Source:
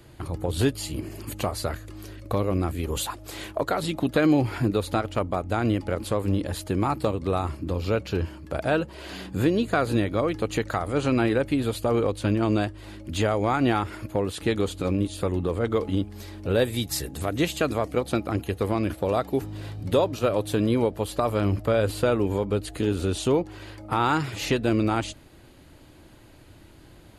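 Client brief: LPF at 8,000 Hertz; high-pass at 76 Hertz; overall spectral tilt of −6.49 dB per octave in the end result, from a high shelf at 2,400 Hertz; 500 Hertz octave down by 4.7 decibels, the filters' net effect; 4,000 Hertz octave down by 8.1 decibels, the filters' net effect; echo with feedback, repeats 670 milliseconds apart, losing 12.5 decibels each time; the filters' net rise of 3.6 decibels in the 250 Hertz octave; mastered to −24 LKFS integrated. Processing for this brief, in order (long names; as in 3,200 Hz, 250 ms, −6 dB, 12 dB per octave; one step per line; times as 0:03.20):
high-pass filter 76 Hz
low-pass filter 8,000 Hz
parametric band 250 Hz +7.5 dB
parametric band 500 Hz −8.5 dB
high-shelf EQ 2,400 Hz −4 dB
parametric band 4,000 Hz −6.5 dB
repeating echo 670 ms, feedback 24%, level −12.5 dB
level +1.5 dB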